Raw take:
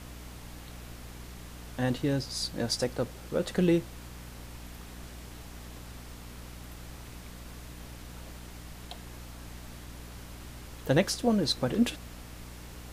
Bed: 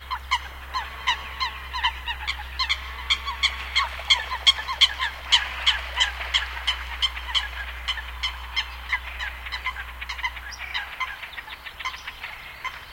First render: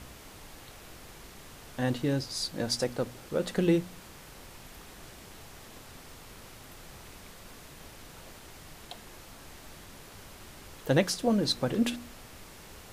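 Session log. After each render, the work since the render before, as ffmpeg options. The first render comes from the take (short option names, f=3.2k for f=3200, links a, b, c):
-af "bandreject=f=60:t=h:w=4,bandreject=f=120:t=h:w=4,bandreject=f=180:t=h:w=4,bandreject=f=240:t=h:w=4,bandreject=f=300:t=h:w=4"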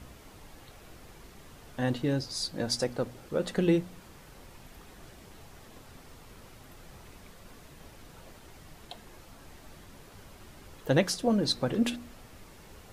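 -af "afftdn=nr=6:nf=-50"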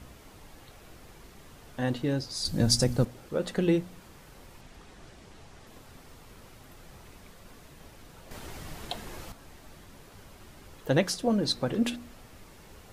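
-filter_complex "[0:a]asettb=1/sr,asplit=3[a][b][c];[a]atrim=end=2.454[d];[b]atrim=start=2.45:end=3.05,asetpts=PTS-STARTPTS,afade=t=in:d=0.004:c=qsin,afade=t=out:st=0.596:d=0.004:c=qsin,bass=f=250:g=15,treble=f=4k:g=9[e];[c]atrim=start=3.046[f];[d][e]acrossfade=d=0.004:c1=hsin:c2=qsin[g];[g][f]acrossfade=d=0.004:c1=qsin:c2=hsin,asettb=1/sr,asplit=3[h][i][j];[h]atrim=end=4.614[k];[i]atrim=start=4.61:end=5.67,asetpts=PTS-STARTPTS,afade=t=in:d=0.004:c=qsin,afade=t=out:st=1.056:d=0.004:c=qsin,lowpass=8.7k[l];[j]atrim=start=5.666[m];[k][l]acrossfade=d=0.004:c1=hsin:c2=qsin[n];[n][m]acrossfade=d=0.004:c1=qsin:c2=hsin,asplit=3[o][p][q];[o]atrim=end=8.312[r];[p]atrim=start=8.308:end=9.322,asetpts=PTS-STARTPTS,volume=9dB[s];[q]atrim=start=9.318[t];[r][s]acrossfade=d=0.004:c1=hsin:c2=hsin[u];[u][t]acrossfade=d=0.004:c1=hsin:c2=hsin"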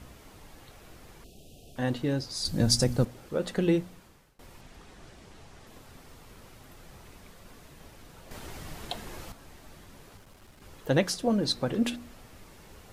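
-filter_complex "[0:a]asettb=1/sr,asplit=3[a][b][c];[a]atrim=end=1.244[d];[b]atrim=start=1.24:end=1.76,asetpts=PTS-STARTPTS,afade=t=in:d=0.004:c=qsin,afade=t=out:st=0.516:d=0.004:c=qsin,asuperstop=centerf=1400:order=20:qfactor=0.79[e];[c]atrim=start=1.756[f];[d][e]acrossfade=d=0.004:c1=hsin:c2=qsin[g];[g][f]acrossfade=d=0.004:c1=qsin:c2=hsin,asettb=1/sr,asplit=3[h][i][j];[h]atrim=end=10.174[k];[i]atrim=start=10.17:end=10.62,asetpts=PTS-STARTPTS,afade=t=in:d=0.004:c=qsin,afade=t=out:st=0.446:d=0.004:c=qsin,aeval=exprs='(tanh(282*val(0)+0.4)-tanh(0.4))/282':c=same[l];[j]atrim=start=10.616[m];[k][l]acrossfade=d=0.004:c1=hsin:c2=qsin[n];[n][m]acrossfade=d=0.004:c1=qsin:c2=hsin,asplit=2[o][p];[o]atrim=end=4.39,asetpts=PTS-STARTPTS,afade=t=out:st=3.81:d=0.58:silence=0.0668344[q];[p]atrim=start=4.39,asetpts=PTS-STARTPTS,afade=t=in:d=0.004:c=hsin:silence=0.0668344[r];[q][r]concat=n=2:v=0:a=1"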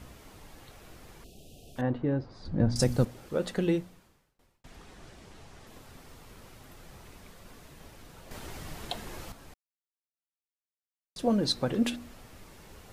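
-filter_complex "[0:a]asettb=1/sr,asplit=3[a][b][c];[a]atrim=end=1.814[d];[b]atrim=start=1.81:end=2.76,asetpts=PTS-STARTPTS,afade=t=in:d=0.004:c=qsin,afade=t=out:st=0.946:d=0.004:c=qsin,lowpass=1.4k[e];[c]atrim=start=2.756[f];[d][e]acrossfade=d=0.004:c1=hsin:c2=qsin[g];[g][f]acrossfade=d=0.004:c1=qsin:c2=hsin,asplit=4[h][i][j][k];[h]atrim=end=4.64,asetpts=PTS-STARTPTS,afade=t=out:st=3.39:d=1.25[l];[i]atrim=start=4.64:end=9.54,asetpts=PTS-STARTPTS,afade=t=in:d=0.004:c=hsin,afade=t=out:st=4.896:d=0.004:c=hsin[m];[j]atrim=start=9.54:end=11.16,asetpts=PTS-STARTPTS,volume=0[n];[k]atrim=start=11.16,asetpts=PTS-STARTPTS,afade=t=in:d=0.004:c=hsin[o];[l][m][n][o]concat=n=4:v=0:a=1"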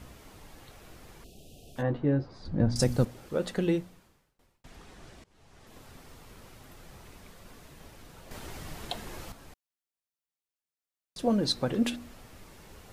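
-filter_complex "[0:a]asettb=1/sr,asplit=3[a][b][c];[a]atrim=end=1.764[d];[b]atrim=start=1.76:end=2.38,asetpts=PTS-STARTPTS,afade=t=in:d=0.004:c=qsin,afade=t=out:st=0.616:d=0.004:c=qsin,asplit=2[e][f];[f]adelay=14,volume=-6dB[g];[e][g]amix=inputs=2:normalize=0,atrim=end_sample=27342[h];[c]atrim=start=2.376[i];[d][h]acrossfade=d=0.004:c1=hsin:c2=qsin[j];[j][i]acrossfade=d=0.004:c1=qsin:c2=hsin,asplit=2[k][l];[k]atrim=end=5.24,asetpts=PTS-STARTPTS,afade=t=out:st=5.236:d=0.004:c=hsin:silence=0.0707946[m];[l]atrim=start=5.24,asetpts=PTS-STARTPTS,afade=t=in:d=0.59:silence=0.0707946[n];[m][n]concat=n=2:v=0:a=1"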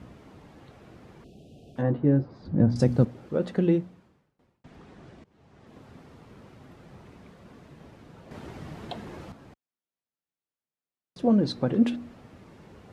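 -af "highpass=180,aemphasis=mode=reproduction:type=riaa"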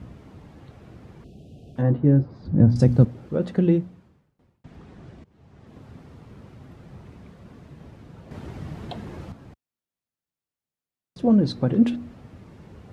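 -af "equalizer=f=76:t=o:w=2.9:g=8.5"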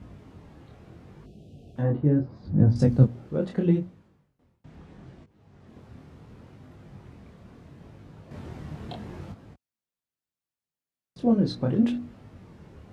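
-af "flanger=delay=19.5:depth=7.1:speed=0.74"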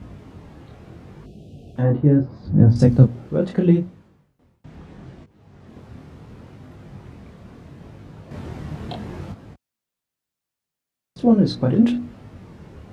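-af "volume=6.5dB,alimiter=limit=-2dB:level=0:latency=1"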